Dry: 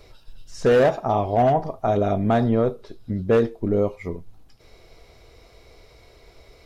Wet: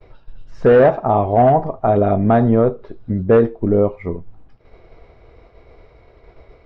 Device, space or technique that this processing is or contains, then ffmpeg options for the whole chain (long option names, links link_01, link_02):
hearing-loss simulation: -af "lowpass=1800,agate=range=-33dB:threshold=-47dB:ratio=3:detection=peak,volume=6dB"